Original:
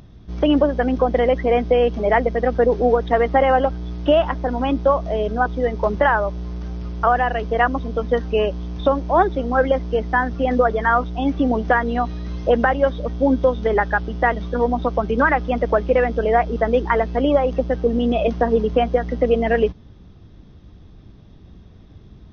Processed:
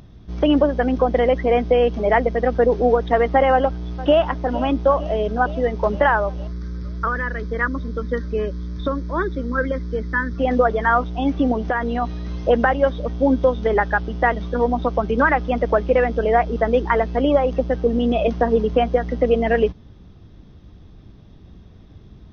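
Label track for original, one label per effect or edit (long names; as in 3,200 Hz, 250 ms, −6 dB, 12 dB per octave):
3.520000	4.240000	delay throw 460 ms, feedback 75%, level −16.5 dB
6.470000	10.380000	phaser with its sweep stopped centre 2,800 Hz, stages 6
11.520000	12.020000	downward compressor 3 to 1, threshold −18 dBFS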